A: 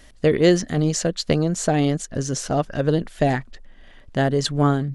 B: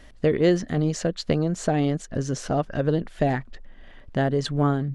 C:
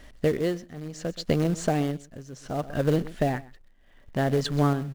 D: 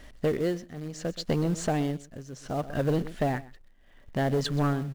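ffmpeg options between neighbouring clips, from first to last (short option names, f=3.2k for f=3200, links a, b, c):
-filter_complex "[0:a]highshelf=f=4.7k:g=-11.5,asplit=2[a][b];[b]acompressor=threshold=-26dB:ratio=6,volume=1dB[c];[a][c]amix=inputs=2:normalize=0,volume=-5.5dB"
-filter_complex "[0:a]aecho=1:1:126:0.133,asplit=2[a][b];[b]acrusher=bits=2:mode=log:mix=0:aa=0.000001,volume=-7dB[c];[a][c]amix=inputs=2:normalize=0,tremolo=f=0.67:d=0.83,volume=-3.5dB"
-af "asoftclip=type=tanh:threshold=-18.5dB"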